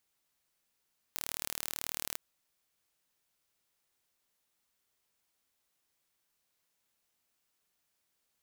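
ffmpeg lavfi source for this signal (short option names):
-f lavfi -i "aevalsrc='0.355*eq(mod(n,1154),0)':d=1.02:s=44100"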